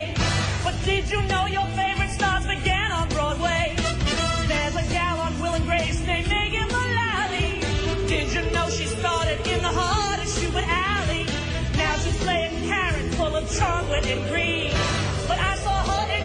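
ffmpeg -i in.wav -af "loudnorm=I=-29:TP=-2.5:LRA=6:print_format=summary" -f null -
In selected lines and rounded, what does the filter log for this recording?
Input Integrated:    -23.5 LUFS
Input True Peak:      -9.2 dBTP
Input LRA:             0.4 LU
Input Threshold:     -33.5 LUFS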